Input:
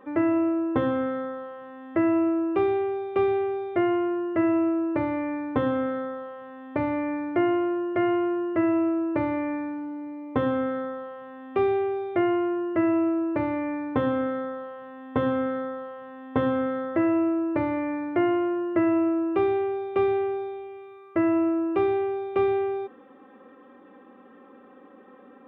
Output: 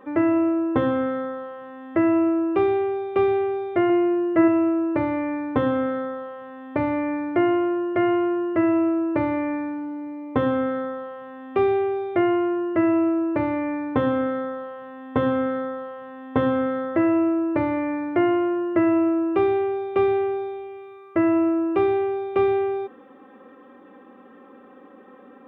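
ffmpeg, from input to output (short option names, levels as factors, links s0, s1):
-filter_complex "[0:a]asettb=1/sr,asplit=3[s0][s1][s2];[s0]atrim=end=3.894[s3];[s1]atrim=start=3.89:end=4.48,asetpts=PTS-STARTPTS,afade=t=in:d=0.004:c=qsin,afade=t=out:st=0.586:d=0.004:c=qsin,aecho=1:1:6.1:0.47,atrim=end_sample=26019[s4];[s2]atrim=start=4.476[s5];[s3][s4]acrossfade=d=0.004:c1=hsin:c2=qsin[s6];[s6][s5]acrossfade=d=0.004:c1=qsin:c2=hsin,volume=1.41"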